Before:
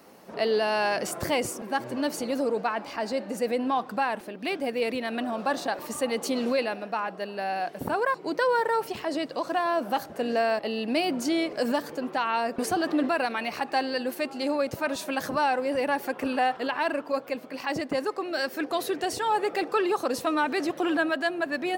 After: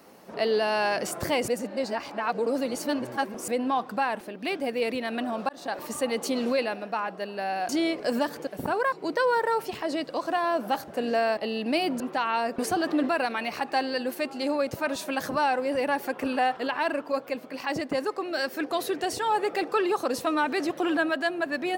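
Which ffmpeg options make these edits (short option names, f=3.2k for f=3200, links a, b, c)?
-filter_complex "[0:a]asplit=7[a][b][c][d][e][f][g];[a]atrim=end=1.482[h];[b]atrim=start=1.478:end=3.482,asetpts=PTS-STARTPTS,areverse[i];[c]atrim=start=3.478:end=5.49,asetpts=PTS-STARTPTS,afade=t=out:st=2.008:d=0.004:c=hsin[j];[d]atrim=start=5.49:end=7.692,asetpts=PTS-STARTPTS,afade=t=in:d=0.29[k];[e]atrim=start=11.218:end=12.002[l];[f]atrim=start=7.688:end=11.222[m];[g]atrim=start=11.998[n];[h][i]acrossfade=d=0.004:c1=hsin:c2=hsin[o];[j][k]concat=n=2:v=0:a=1[p];[o][p]acrossfade=d=0.004:c1=hsin:c2=hsin[q];[q][l]acrossfade=d=0.004:c1=hsin:c2=hsin[r];[r][m]acrossfade=d=0.004:c1=hsin:c2=hsin[s];[s][n]acrossfade=d=0.004:c1=hsin:c2=hsin"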